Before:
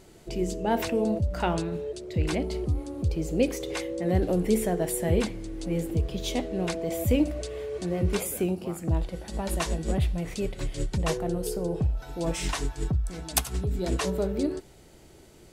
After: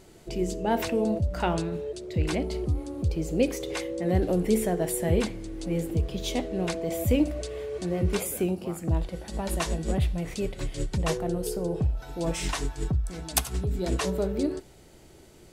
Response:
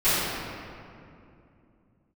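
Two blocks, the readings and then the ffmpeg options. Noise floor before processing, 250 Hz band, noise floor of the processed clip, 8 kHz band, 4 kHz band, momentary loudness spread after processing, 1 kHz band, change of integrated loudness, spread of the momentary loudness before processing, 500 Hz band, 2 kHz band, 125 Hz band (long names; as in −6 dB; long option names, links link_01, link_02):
−52 dBFS, 0.0 dB, −52 dBFS, 0.0 dB, 0.0 dB, 7 LU, 0.0 dB, 0.0 dB, 7 LU, 0.0 dB, 0.0 dB, 0.0 dB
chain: -filter_complex "[0:a]asplit=2[link_01][link_02];[1:a]atrim=start_sample=2205,atrim=end_sample=3969[link_03];[link_02][link_03]afir=irnorm=-1:irlink=0,volume=-37dB[link_04];[link_01][link_04]amix=inputs=2:normalize=0"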